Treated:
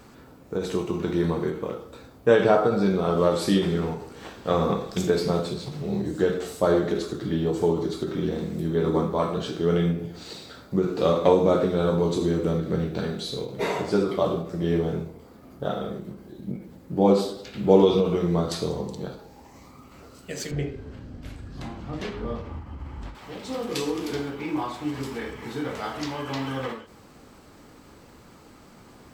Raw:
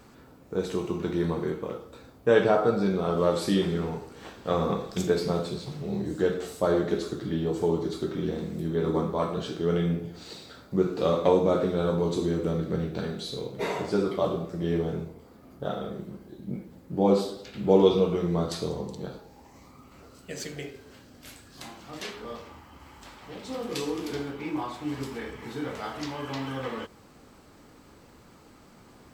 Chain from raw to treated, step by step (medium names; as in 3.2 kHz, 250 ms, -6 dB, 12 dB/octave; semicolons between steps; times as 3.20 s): 20.51–23.15 s: RIAA curve playback; endings held to a fixed fall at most 120 dB/s; trim +3.5 dB